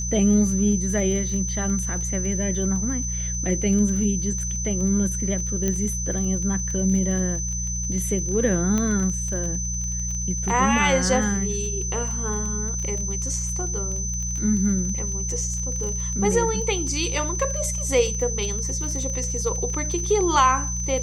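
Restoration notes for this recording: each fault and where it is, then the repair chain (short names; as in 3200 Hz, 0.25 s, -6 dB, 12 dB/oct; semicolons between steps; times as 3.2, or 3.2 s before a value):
crackle 24/s -29 dBFS
hum 60 Hz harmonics 3 -29 dBFS
tone 6100 Hz -28 dBFS
5.68 pop -11 dBFS
8.78 pop -12 dBFS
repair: de-click; de-hum 60 Hz, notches 3; notch 6100 Hz, Q 30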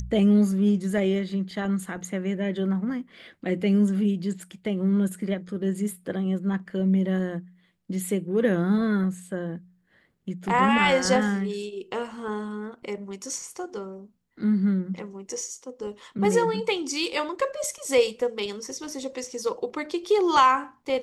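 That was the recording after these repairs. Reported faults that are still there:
none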